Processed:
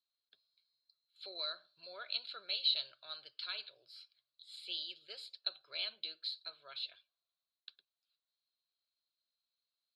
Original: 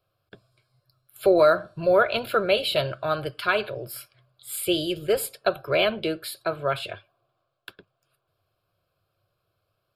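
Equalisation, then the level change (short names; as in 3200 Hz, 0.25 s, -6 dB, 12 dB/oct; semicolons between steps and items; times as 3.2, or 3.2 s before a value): band-pass 4100 Hz, Q 11; air absorption 75 m; +4.0 dB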